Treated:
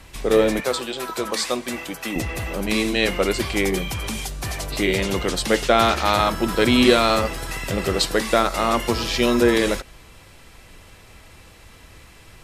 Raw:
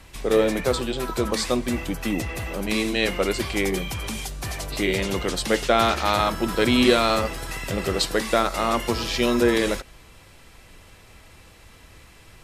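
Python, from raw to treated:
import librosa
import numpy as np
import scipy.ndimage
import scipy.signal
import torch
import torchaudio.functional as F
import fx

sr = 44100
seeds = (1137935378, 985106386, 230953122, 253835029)

y = fx.highpass(x, sr, hz=540.0, slope=6, at=(0.6, 2.16))
y = F.gain(torch.from_numpy(y), 2.5).numpy()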